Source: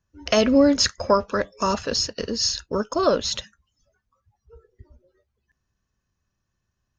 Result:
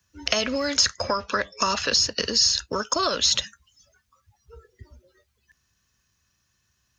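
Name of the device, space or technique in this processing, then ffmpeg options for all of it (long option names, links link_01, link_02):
mastering chain: -filter_complex "[0:a]asettb=1/sr,asplit=3[link_01][link_02][link_03];[link_01]atrim=end=1.034[link_04];[link_02]atrim=start=1.03:end=1.92,asetpts=PTS-STARTPTS,afade=type=in:duration=0.004:curve=qsin,afade=type=out:start_time=0.886:duration=0.004:curve=qsin,lowpass=5400[link_05];[link_03]atrim=start=1.916[link_06];[link_04][link_05]acrossfade=duration=0.004:curve1=hsin:curve2=qsin[link_07];[link_07][link_06]acrossfade=duration=0.004:curve1=qsin:curve2=hsin,highpass=54,equalizer=frequency=630:width_type=o:width=2.5:gain=-4,acrossover=split=84|430|1200[link_08][link_09][link_10][link_11];[link_08]acompressor=threshold=-50dB:ratio=4[link_12];[link_09]acompressor=threshold=-35dB:ratio=4[link_13];[link_10]acompressor=threshold=-29dB:ratio=4[link_14];[link_11]acompressor=threshold=-32dB:ratio=4[link_15];[link_12][link_13][link_14][link_15]amix=inputs=4:normalize=0,acompressor=threshold=-29dB:ratio=3,tiltshelf=frequency=1100:gain=-6,alimiter=level_in=13dB:limit=-1dB:release=50:level=0:latency=1,equalizer=frequency=61:width_type=o:width=0.77:gain=2.5,volume=-4dB"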